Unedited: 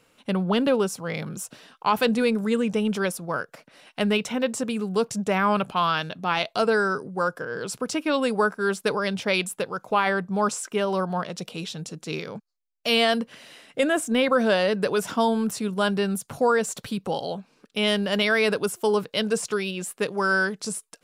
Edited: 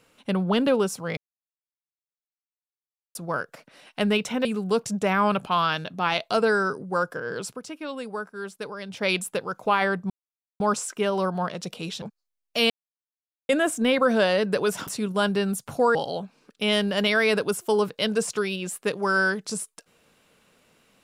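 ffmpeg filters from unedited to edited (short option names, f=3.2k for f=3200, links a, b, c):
-filter_complex "[0:a]asplit=12[a][b][c][d][e][f][g][h][i][j][k][l];[a]atrim=end=1.17,asetpts=PTS-STARTPTS,afade=t=out:st=1.166:d=0.004:c=hsin[m];[b]atrim=start=1.17:end=3.15,asetpts=PTS-STARTPTS,volume=0[n];[c]atrim=start=3.15:end=4.452,asetpts=PTS-STARTPTS,afade=t=in:d=0.004:c=hsin[o];[d]atrim=start=4.698:end=7.86,asetpts=PTS-STARTPTS,afade=t=out:st=2.932:d=0.23:silence=0.298538[p];[e]atrim=start=7.86:end=9.13,asetpts=PTS-STARTPTS,volume=-10.5dB[q];[f]atrim=start=9.13:end=10.35,asetpts=PTS-STARTPTS,afade=t=in:d=0.23:silence=0.298538,afade=t=out:st=1.216:d=0.004:c=hsin,apad=pad_dur=0.5[r];[g]atrim=start=10.35:end=11.772,asetpts=PTS-STARTPTS,afade=t=in:d=0.004:c=hsin[s];[h]atrim=start=12.318:end=13,asetpts=PTS-STARTPTS,afade=t=out:st=0.678:d=0.004:c=hsin[t];[i]atrim=start=13:end=13.79,asetpts=PTS-STARTPTS,volume=0[u];[j]atrim=start=13.79:end=15.172,asetpts=PTS-STARTPTS,afade=t=in:d=0.004:c=hsin[v];[k]atrim=start=15.488:end=16.572[w];[l]atrim=start=17.098[x];[m][n][o]concat=n=3:v=0:a=1[y];[p][q][r][s]concat=n=4:v=0:a=1[z];[y][z]acrossfade=d=0.004:c1=hsin:c2=hsin[aa];[t][u][v]concat=n=3:v=0:a=1[ab];[aa][ab]acrossfade=d=0.004:c1=hsin:c2=hsin[ac];[ac][w]acrossfade=d=0.004:c1=hsin:c2=hsin[ad];[ad][x]acrossfade=d=0.004:c1=hsin:c2=hsin"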